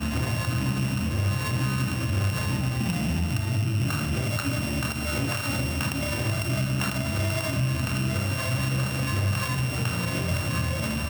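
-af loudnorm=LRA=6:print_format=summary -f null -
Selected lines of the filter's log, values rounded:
Input Integrated:    -26.5 LUFS
Input True Peak:     -13.8 dBTP
Input LRA:             0.5 LU
Input Threshold:     -36.5 LUFS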